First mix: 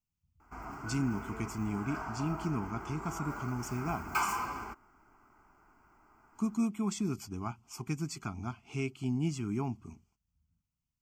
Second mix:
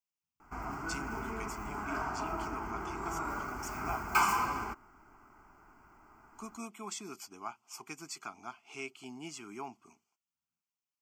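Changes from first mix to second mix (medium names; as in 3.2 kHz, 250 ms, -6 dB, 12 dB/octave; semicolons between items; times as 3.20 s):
speech: add high-pass 550 Hz 12 dB/octave; background +4.0 dB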